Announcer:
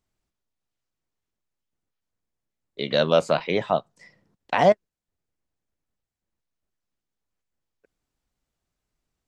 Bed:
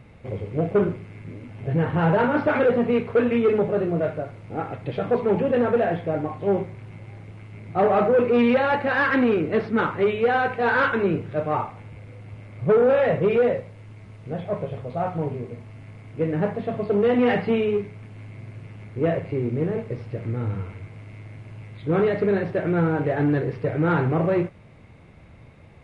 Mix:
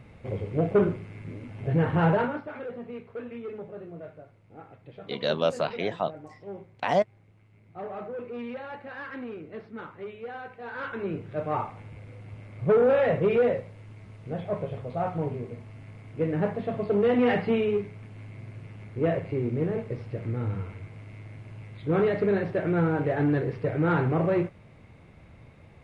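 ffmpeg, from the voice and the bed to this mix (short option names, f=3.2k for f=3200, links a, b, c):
-filter_complex "[0:a]adelay=2300,volume=-6dB[a];[1:a]volume=13.5dB,afade=t=out:st=2.05:d=0.37:silence=0.149624,afade=t=in:st=10.72:d=1:silence=0.177828[b];[a][b]amix=inputs=2:normalize=0"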